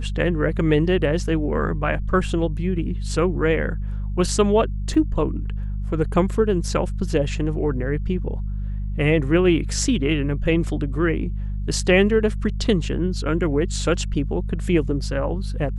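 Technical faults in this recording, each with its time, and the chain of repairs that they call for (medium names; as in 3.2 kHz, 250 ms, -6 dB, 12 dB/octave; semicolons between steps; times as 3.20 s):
hum 50 Hz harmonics 4 -26 dBFS
4.94 s: dropout 3.7 ms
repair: de-hum 50 Hz, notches 4; interpolate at 4.94 s, 3.7 ms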